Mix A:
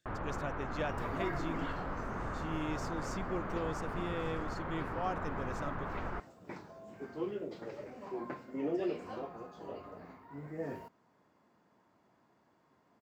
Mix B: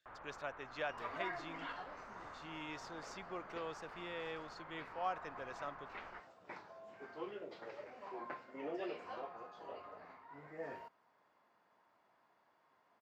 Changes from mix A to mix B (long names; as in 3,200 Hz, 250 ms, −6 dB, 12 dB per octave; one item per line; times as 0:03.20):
first sound −10.5 dB
master: add three-way crossover with the lows and the highs turned down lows −15 dB, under 540 Hz, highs −15 dB, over 5,200 Hz